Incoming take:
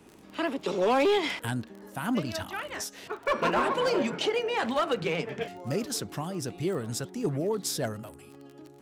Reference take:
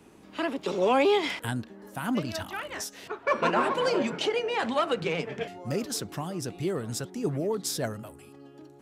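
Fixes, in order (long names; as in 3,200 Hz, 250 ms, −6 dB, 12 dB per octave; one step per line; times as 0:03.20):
clipped peaks rebuilt −19.5 dBFS
click removal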